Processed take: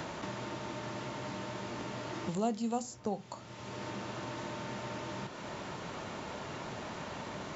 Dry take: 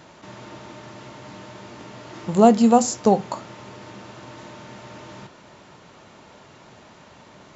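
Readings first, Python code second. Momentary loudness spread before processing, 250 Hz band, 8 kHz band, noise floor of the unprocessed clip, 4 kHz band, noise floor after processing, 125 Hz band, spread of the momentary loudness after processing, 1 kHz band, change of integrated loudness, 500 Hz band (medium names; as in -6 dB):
20 LU, -16.0 dB, no reading, -49 dBFS, -5.0 dB, -48 dBFS, -8.0 dB, 7 LU, -14.5 dB, -21.5 dB, -15.5 dB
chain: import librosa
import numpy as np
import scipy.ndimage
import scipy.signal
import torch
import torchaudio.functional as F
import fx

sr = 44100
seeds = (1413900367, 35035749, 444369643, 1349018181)

y = fx.band_squash(x, sr, depth_pct=100)
y = F.gain(torch.from_numpy(y), -1.5).numpy()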